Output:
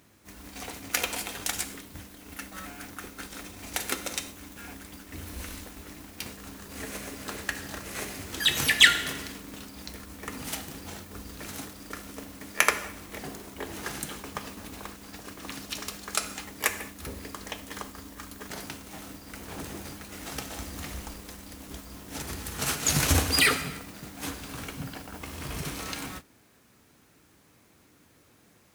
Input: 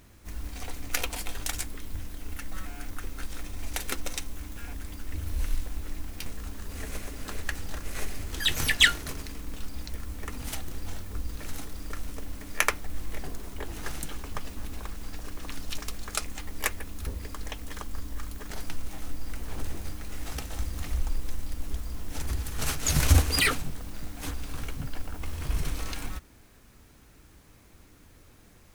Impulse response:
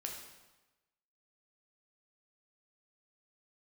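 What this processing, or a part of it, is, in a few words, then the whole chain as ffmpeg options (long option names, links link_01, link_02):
keyed gated reverb: -filter_complex "[0:a]highpass=130,asplit=3[link_01][link_02][link_03];[1:a]atrim=start_sample=2205[link_04];[link_02][link_04]afir=irnorm=-1:irlink=0[link_05];[link_03]apad=whole_len=1267481[link_06];[link_05][link_06]sidechaingate=range=-33dB:threshold=-44dB:ratio=16:detection=peak,volume=0.5dB[link_07];[link_01][link_07]amix=inputs=2:normalize=0,volume=-2dB"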